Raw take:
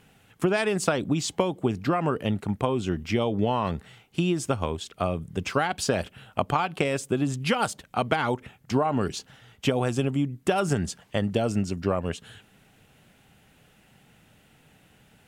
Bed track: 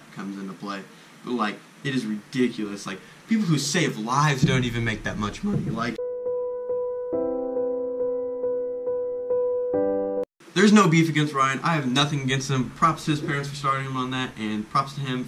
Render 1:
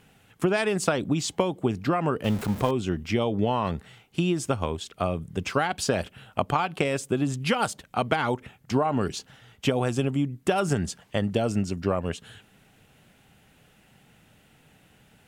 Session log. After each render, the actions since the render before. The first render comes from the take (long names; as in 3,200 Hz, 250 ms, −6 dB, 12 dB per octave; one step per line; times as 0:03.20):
0:02.24–0:02.71: converter with a step at zero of −31.5 dBFS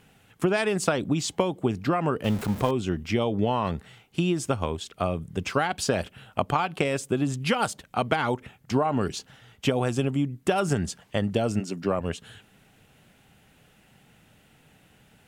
0:11.59–0:11.99: high-pass filter 250 Hz → 90 Hz 24 dB per octave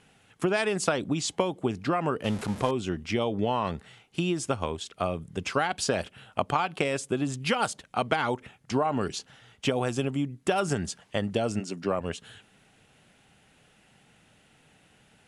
elliptic low-pass filter 11,000 Hz, stop band 40 dB
low-shelf EQ 220 Hz −5 dB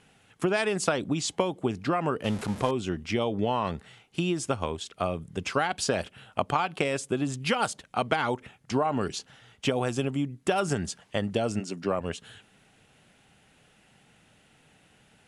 no processing that can be heard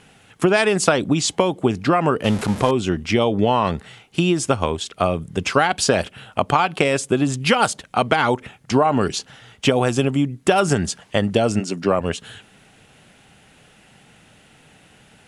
level +9.5 dB
brickwall limiter −2 dBFS, peak gain reduction 2.5 dB